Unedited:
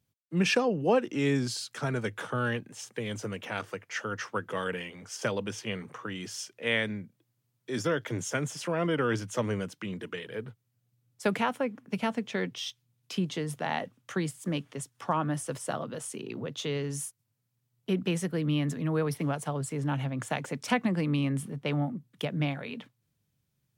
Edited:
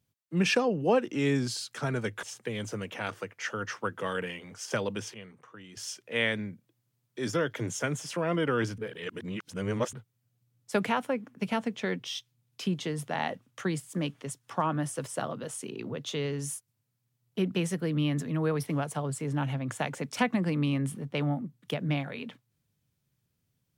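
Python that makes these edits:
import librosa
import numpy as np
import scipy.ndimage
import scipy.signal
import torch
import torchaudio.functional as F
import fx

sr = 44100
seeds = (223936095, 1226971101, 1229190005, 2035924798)

y = fx.edit(x, sr, fx.cut(start_s=2.23, length_s=0.51),
    fx.clip_gain(start_s=5.65, length_s=0.63, db=-11.5),
    fx.reverse_span(start_s=9.29, length_s=1.15), tone=tone)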